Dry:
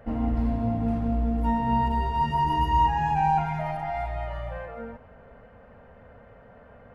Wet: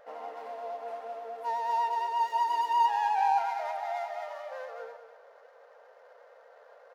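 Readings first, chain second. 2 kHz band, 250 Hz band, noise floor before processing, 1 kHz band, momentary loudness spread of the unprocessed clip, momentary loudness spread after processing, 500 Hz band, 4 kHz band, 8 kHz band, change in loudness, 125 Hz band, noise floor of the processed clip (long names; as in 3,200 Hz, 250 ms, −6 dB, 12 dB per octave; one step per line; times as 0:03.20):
−3.5 dB, below −35 dB, −51 dBFS, −2.5 dB, 13 LU, 15 LU, −3.0 dB, −3.0 dB, can't be measured, −4.5 dB, below −40 dB, −57 dBFS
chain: running median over 15 samples
elliptic high-pass filter 480 Hz, stop band 80 dB
pitch vibrato 8.4 Hz 34 cents
single-tap delay 206 ms −10 dB
level −2 dB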